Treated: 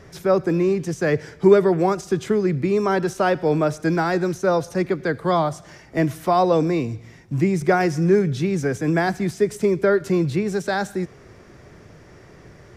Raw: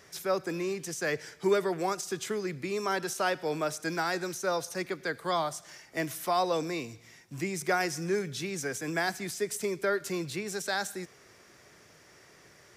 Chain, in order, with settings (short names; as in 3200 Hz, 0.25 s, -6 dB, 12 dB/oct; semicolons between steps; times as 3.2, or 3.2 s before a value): tilt -3.5 dB/oct; gain +8 dB